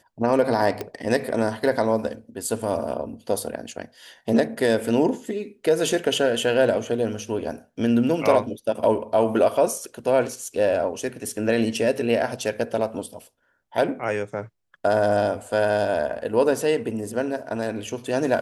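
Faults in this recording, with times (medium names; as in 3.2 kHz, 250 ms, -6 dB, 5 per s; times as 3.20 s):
0.81 s: pop -14 dBFS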